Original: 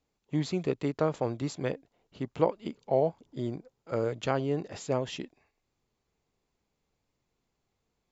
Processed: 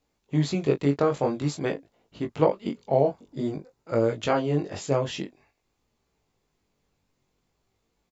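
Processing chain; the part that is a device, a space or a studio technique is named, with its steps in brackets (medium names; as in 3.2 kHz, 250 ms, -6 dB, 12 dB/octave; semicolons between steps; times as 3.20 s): double-tracked vocal (doubling 21 ms -11.5 dB; chorus 0.5 Hz, delay 17.5 ms, depth 4.3 ms); 3.02–4.00 s: band-stop 3.2 kHz, Q 9.8; trim +8 dB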